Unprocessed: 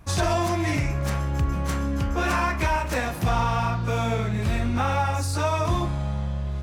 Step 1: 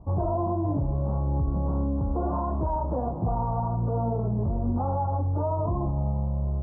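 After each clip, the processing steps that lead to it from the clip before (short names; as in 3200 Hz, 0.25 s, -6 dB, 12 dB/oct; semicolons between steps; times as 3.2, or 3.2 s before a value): steep low-pass 990 Hz 48 dB/oct; limiter -20.5 dBFS, peak gain reduction 6.5 dB; gain +1.5 dB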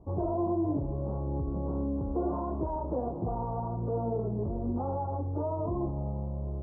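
bell 380 Hz +10.5 dB 1.2 oct; gain -8.5 dB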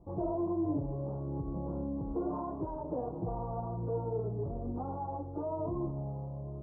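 flange 0.56 Hz, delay 5.8 ms, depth 1.3 ms, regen -28%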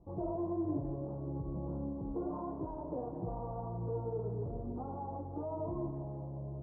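air absorption 280 m; tape echo 0.172 s, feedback 77%, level -9 dB, low-pass 1300 Hz; gain -3 dB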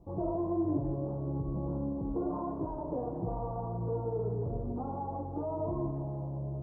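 reverb RT60 0.35 s, pre-delay 45 ms, DRR 11.5 dB; gain +4 dB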